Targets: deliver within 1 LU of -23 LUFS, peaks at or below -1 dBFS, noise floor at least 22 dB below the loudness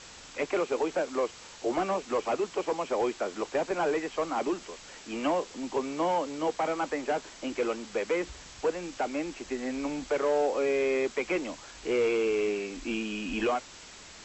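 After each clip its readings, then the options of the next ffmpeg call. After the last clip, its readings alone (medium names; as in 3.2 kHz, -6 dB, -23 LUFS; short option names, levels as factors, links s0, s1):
noise floor -49 dBFS; noise floor target -53 dBFS; loudness -30.5 LUFS; peak level -18.0 dBFS; loudness target -23.0 LUFS
-> -af "afftdn=nr=6:nf=-49"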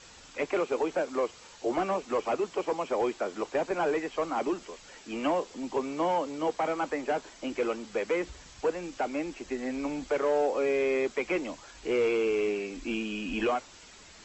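noise floor -52 dBFS; noise floor target -53 dBFS
-> -af "afftdn=nr=6:nf=-52"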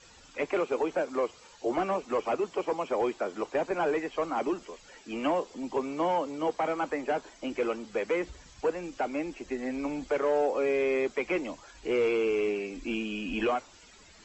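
noise floor -55 dBFS; loudness -31.0 LUFS; peak level -18.0 dBFS; loudness target -23.0 LUFS
-> -af "volume=2.51"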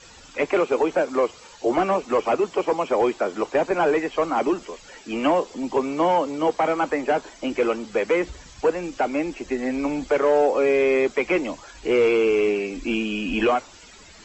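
loudness -23.0 LUFS; peak level -10.0 dBFS; noise floor -47 dBFS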